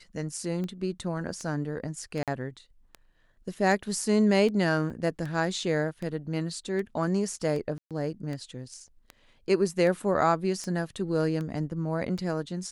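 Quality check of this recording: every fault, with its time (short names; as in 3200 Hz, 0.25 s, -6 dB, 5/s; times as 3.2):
tick 78 rpm -24 dBFS
2.23–2.28 gap 47 ms
4.9–4.91 gap 5 ms
7.78–7.91 gap 0.127 s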